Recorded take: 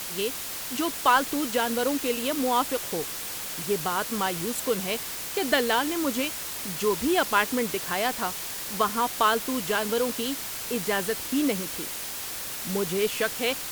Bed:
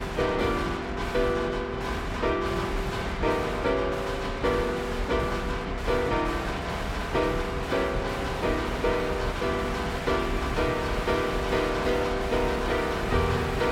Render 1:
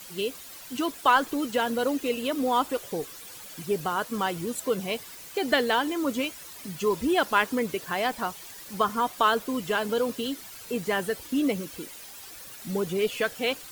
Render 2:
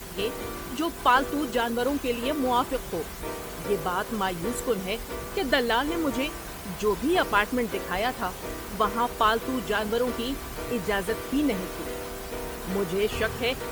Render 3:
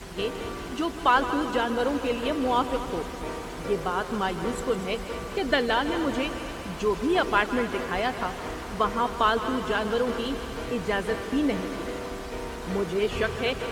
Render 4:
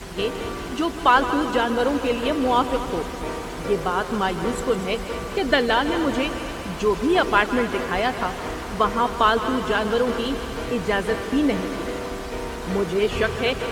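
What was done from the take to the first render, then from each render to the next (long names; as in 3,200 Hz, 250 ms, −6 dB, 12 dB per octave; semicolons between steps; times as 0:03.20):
broadband denoise 12 dB, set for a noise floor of −35 dBFS
mix in bed −9.5 dB
high-frequency loss of the air 54 metres; echo machine with several playback heads 79 ms, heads second and third, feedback 67%, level −13.5 dB
level +4.5 dB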